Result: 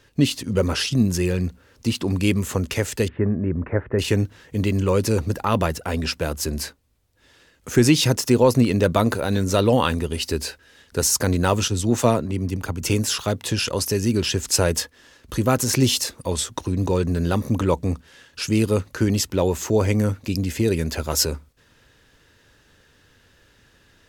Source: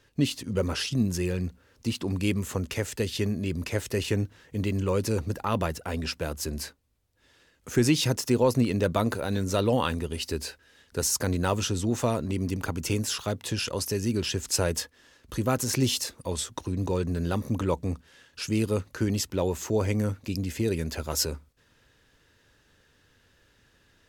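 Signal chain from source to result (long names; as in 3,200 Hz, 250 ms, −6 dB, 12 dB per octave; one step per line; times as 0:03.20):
0:03.08–0:03.99: Butterworth low-pass 1,800 Hz 36 dB per octave
0:11.68–0:12.82: multiband upward and downward expander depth 100%
level +6.5 dB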